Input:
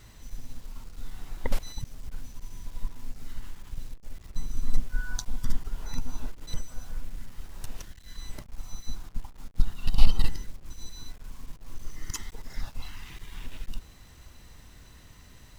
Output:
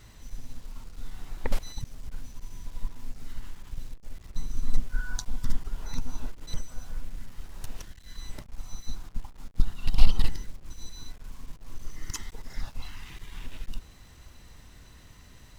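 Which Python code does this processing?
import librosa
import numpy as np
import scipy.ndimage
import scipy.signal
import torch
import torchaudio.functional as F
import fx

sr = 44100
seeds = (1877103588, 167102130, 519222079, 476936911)

y = fx.doppler_dist(x, sr, depth_ms=0.62)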